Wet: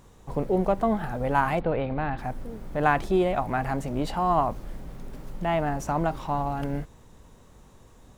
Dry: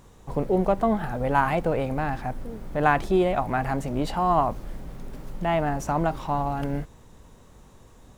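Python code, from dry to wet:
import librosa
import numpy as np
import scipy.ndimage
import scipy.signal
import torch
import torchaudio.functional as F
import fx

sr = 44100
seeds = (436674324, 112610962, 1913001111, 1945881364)

y = fx.steep_lowpass(x, sr, hz=4200.0, slope=48, at=(1.59, 2.17), fade=0.02)
y = y * 10.0 ** (-1.5 / 20.0)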